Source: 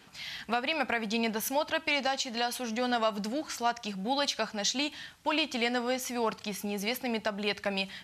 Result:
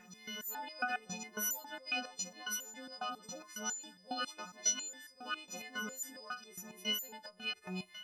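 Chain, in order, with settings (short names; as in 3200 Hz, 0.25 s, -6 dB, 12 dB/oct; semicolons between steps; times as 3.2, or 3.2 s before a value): frequency quantiser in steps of 3 st; reverse echo 0.987 s -9.5 dB; stepped resonator 7.3 Hz 180–550 Hz; gain +1.5 dB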